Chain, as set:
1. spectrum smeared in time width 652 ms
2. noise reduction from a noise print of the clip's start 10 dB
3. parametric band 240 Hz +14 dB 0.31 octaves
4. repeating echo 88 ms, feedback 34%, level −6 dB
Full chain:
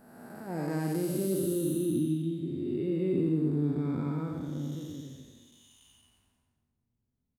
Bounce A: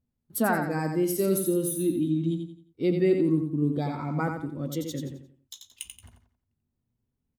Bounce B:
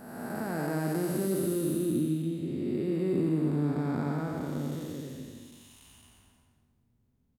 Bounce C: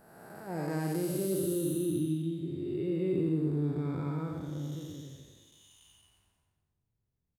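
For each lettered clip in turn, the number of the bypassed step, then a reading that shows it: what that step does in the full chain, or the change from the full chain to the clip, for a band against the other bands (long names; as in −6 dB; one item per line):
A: 1, 2 kHz band +7.5 dB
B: 2, 2 kHz band +5.5 dB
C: 3, 250 Hz band −2.5 dB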